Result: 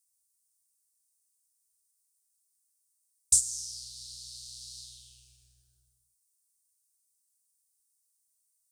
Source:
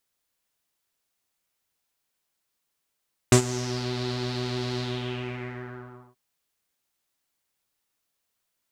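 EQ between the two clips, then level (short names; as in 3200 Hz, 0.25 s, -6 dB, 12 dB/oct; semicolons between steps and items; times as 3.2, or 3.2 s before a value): HPF 55 Hz; inverse Chebyshev band-stop 150–2200 Hz, stop band 50 dB; bell 9000 Hz +12 dB 0.42 oct; 0.0 dB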